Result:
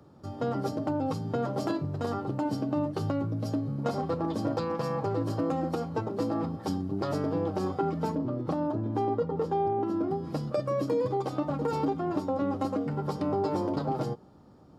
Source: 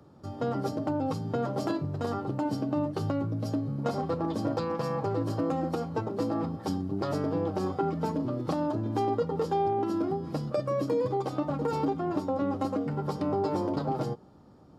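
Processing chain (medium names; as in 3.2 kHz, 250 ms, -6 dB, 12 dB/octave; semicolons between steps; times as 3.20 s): 8.15–10.11 s: treble shelf 2.5 kHz -11 dB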